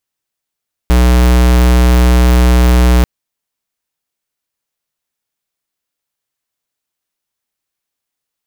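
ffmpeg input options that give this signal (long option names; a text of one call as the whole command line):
ffmpeg -f lavfi -i "aevalsrc='0.422*(2*lt(mod(61.3*t,1),0.5)-1)':duration=2.14:sample_rate=44100" out.wav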